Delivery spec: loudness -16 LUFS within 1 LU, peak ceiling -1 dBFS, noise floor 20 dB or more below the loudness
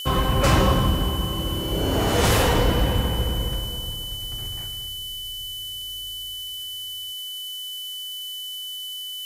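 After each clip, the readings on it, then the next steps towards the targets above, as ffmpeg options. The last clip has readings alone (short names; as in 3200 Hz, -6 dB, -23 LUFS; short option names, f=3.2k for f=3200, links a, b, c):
steady tone 3000 Hz; tone level -31 dBFS; noise floor -33 dBFS; noise floor target -45 dBFS; loudness -25.0 LUFS; peak -8.0 dBFS; loudness target -16.0 LUFS
-> -af "bandreject=f=3k:w=30"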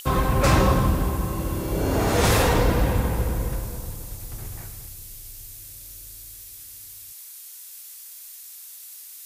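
steady tone none; noise floor -42 dBFS; noise floor target -43 dBFS
-> -af "afftdn=nr=6:nf=-42"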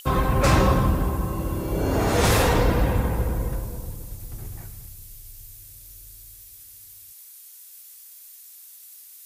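noise floor -46 dBFS; loudness -22.5 LUFS; peak -8.0 dBFS; loudness target -16.0 LUFS
-> -af "volume=6.5dB"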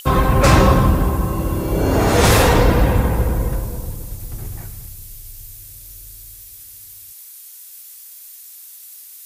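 loudness -16.0 LUFS; peak -1.5 dBFS; noise floor -40 dBFS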